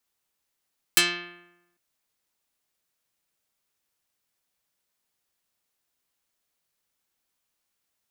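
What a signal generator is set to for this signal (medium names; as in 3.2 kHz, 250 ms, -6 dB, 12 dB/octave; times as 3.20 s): plucked string F3, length 0.80 s, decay 0.96 s, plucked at 0.36, dark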